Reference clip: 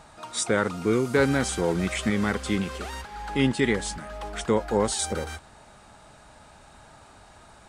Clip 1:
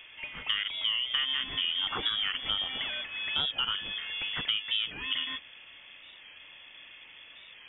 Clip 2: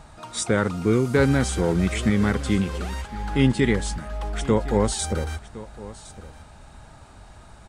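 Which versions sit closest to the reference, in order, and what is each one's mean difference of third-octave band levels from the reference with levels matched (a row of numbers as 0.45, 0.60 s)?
2, 1; 3.0, 14.0 dB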